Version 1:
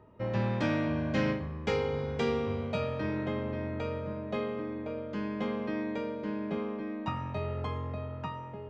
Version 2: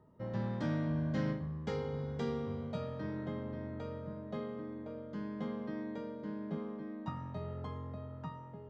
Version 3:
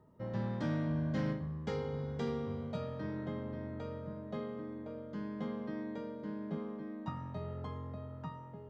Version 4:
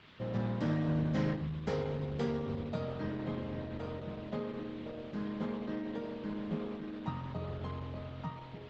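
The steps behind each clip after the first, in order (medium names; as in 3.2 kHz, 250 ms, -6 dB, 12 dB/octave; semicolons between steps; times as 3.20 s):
graphic EQ with 31 bands 160 Hz +11 dB, 250 Hz +4 dB, 2.5 kHz -12 dB; trim -8.5 dB
hard clipper -27 dBFS, distortion -31 dB
band noise 1–3.7 kHz -62 dBFS; trim +3 dB; Opus 12 kbps 48 kHz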